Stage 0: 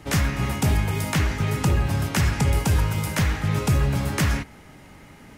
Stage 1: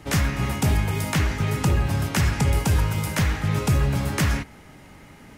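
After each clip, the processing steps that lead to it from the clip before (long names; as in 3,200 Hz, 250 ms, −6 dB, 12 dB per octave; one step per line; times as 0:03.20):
no processing that can be heard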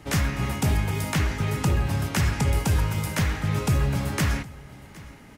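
single-tap delay 766 ms −21 dB
level −2 dB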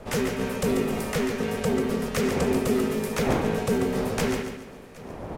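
wind on the microphone 420 Hz −34 dBFS
ring modulation 320 Hz
repeating echo 141 ms, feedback 37%, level −7 dB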